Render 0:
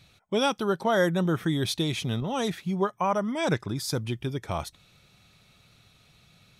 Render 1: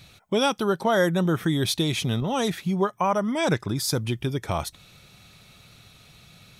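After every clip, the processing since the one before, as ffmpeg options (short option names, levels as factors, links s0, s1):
-filter_complex "[0:a]highshelf=f=10000:g=5.5,asplit=2[s0][s1];[s1]acompressor=threshold=0.02:ratio=6,volume=1.26[s2];[s0][s2]amix=inputs=2:normalize=0"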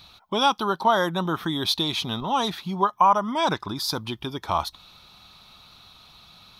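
-af "equalizer=f=125:t=o:w=1:g=-10,equalizer=f=500:t=o:w=1:g=-7,equalizer=f=1000:t=o:w=1:g=12,equalizer=f=2000:t=o:w=1:g=-8,equalizer=f=4000:t=o:w=1:g=9,equalizer=f=8000:t=o:w=1:g=-11"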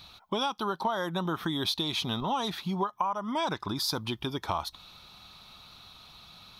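-af "acompressor=threshold=0.0562:ratio=10,volume=0.891"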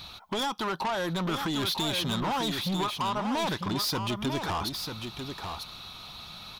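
-filter_complex "[0:a]asoftclip=type=tanh:threshold=0.0211,asplit=2[s0][s1];[s1]aecho=0:1:946:0.473[s2];[s0][s2]amix=inputs=2:normalize=0,volume=2.24"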